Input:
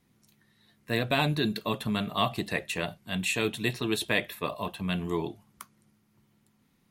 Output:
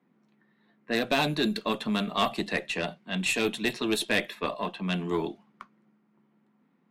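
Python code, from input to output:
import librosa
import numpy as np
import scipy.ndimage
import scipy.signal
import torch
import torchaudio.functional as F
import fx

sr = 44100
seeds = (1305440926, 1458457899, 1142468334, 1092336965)

y = scipy.signal.sosfilt(scipy.signal.butter(6, 170.0, 'highpass', fs=sr, output='sos'), x)
y = fx.cheby_harmonics(y, sr, harmonics=(4, 5), levels_db=(-18, -20), full_scale_db=-11.0)
y = fx.env_lowpass(y, sr, base_hz=1600.0, full_db=-21.5)
y = y * 10.0 ** (-1.0 / 20.0)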